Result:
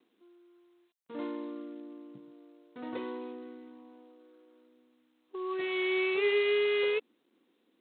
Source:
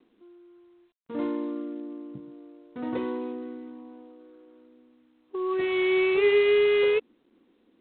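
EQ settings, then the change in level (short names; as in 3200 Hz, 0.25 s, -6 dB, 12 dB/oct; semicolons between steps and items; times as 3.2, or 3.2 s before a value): HPF 300 Hz 6 dB/oct; high shelf 3800 Hz +8.5 dB; -5.5 dB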